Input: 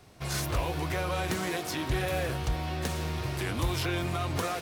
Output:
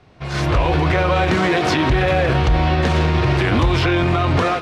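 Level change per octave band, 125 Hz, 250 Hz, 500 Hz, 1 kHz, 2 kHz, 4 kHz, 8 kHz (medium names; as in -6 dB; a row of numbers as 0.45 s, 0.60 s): +14.5 dB, +15.0 dB, +14.5 dB, +14.5 dB, +14.0 dB, +11.0 dB, +1.0 dB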